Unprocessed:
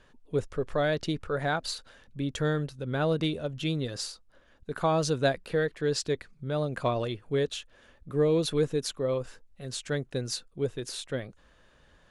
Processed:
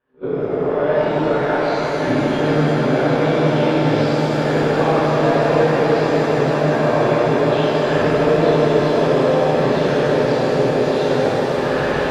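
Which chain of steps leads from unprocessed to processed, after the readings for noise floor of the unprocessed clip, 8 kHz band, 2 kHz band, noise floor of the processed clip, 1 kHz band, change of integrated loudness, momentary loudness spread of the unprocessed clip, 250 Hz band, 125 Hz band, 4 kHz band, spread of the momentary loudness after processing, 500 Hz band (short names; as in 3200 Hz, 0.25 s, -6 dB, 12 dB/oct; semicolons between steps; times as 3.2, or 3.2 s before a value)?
-61 dBFS, n/a, +14.0 dB, -21 dBFS, +16.5 dB, +13.5 dB, 11 LU, +15.0 dB, +11.5 dB, +7.5 dB, 3 LU, +14.5 dB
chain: spectral swells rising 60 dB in 0.42 s; recorder AGC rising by 74 dB/s; HPF 290 Hz 6 dB/oct; gate -32 dBFS, range -16 dB; high shelf 3200 Hz -11.5 dB; in parallel at +2.5 dB: limiter -25.5 dBFS, peak gain reduction 11.5 dB; on the sum: sample leveller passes 1; air absorption 340 m; on a send: swelling echo 0.158 s, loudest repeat 8, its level -12 dB; on the sum: shimmer reverb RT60 3.4 s, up +7 st, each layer -8 dB, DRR -9 dB; gain -5.5 dB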